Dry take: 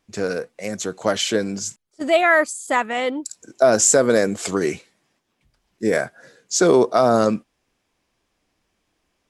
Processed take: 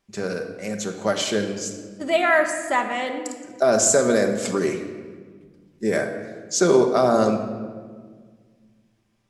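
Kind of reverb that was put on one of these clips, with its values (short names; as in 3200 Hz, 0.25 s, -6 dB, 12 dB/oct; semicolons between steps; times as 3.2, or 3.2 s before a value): shoebox room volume 2000 m³, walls mixed, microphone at 1.2 m; gain -3.5 dB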